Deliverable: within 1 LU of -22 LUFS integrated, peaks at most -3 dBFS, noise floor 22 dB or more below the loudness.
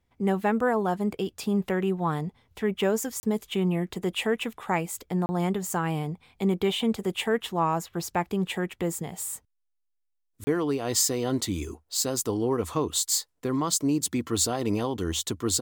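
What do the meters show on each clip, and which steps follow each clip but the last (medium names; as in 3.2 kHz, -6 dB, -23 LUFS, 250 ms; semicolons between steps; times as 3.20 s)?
dropouts 3; longest dropout 30 ms; loudness -27.5 LUFS; peak level -10.5 dBFS; loudness target -22.0 LUFS
-> interpolate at 3.20/5.26/10.44 s, 30 ms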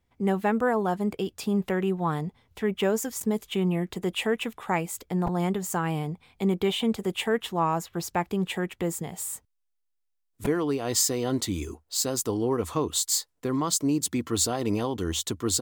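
dropouts 0; loudness -27.5 LUFS; peak level -10.5 dBFS; loudness target -22.0 LUFS
-> trim +5.5 dB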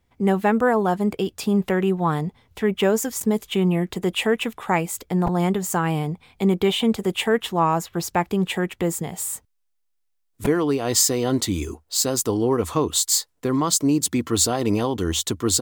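loudness -22.0 LUFS; peak level -5.0 dBFS; noise floor -70 dBFS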